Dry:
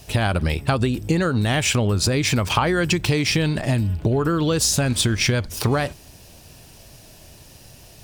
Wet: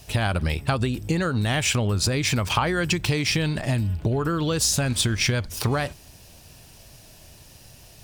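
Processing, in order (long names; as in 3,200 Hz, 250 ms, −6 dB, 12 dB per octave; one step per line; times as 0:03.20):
parametric band 350 Hz −3 dB 1.9 octaves
level −2 dB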